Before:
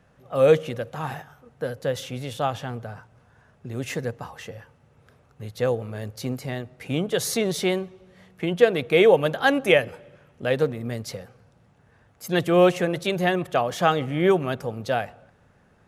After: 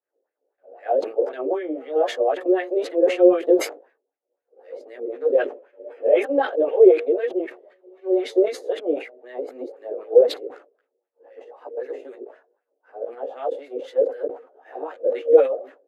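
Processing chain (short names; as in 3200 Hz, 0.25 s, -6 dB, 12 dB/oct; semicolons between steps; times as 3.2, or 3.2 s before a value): whole clip reversed; steep high-pass 280 Hz 72 dB/oct; expander -50 dBFS; resonant low shelf 770 Hz +14 dB, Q 1.5; notch 5600 Hz, Q 12; in parallel at +2 dB: compressor, threshold -14 dBFS, peak gain reduction 19 dB; on the sum: chorus voices 4, 0.37 Hz, delay 15 ms, depth 4.5 ms; LFO band-pass sine 3.9 Hz 440–2000 Hz; sustainer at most 140 dB/s; gain -6.5 dB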